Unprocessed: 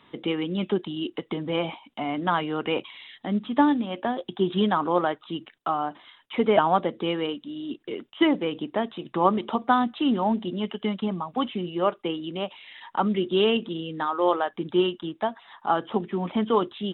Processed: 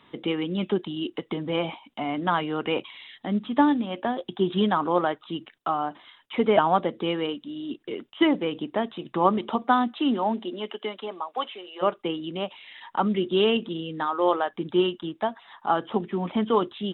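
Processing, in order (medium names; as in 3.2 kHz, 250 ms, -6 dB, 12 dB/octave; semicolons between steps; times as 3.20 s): 9.63–11.81 s: high-pass 160 Hz -> 540 Hz 24 dB/octave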